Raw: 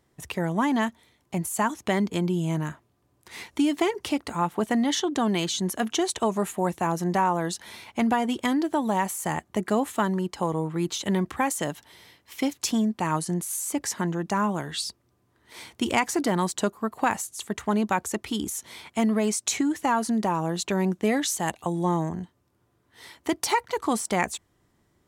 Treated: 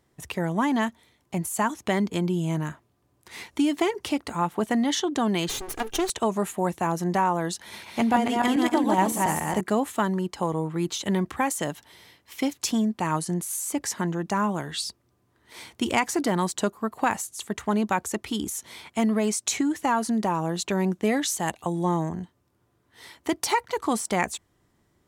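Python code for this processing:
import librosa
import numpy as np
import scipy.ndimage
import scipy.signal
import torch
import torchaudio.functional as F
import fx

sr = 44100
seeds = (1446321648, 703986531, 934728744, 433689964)

y = fx.lower_of_two(x, sr, delay_ms=2.5, at=(5.49, 6.1))
y = fx.reverse_delay_fb(y, sr, ms=140, feedback_pct=45, wet_db=-1.0, at=(7.58, 9.61))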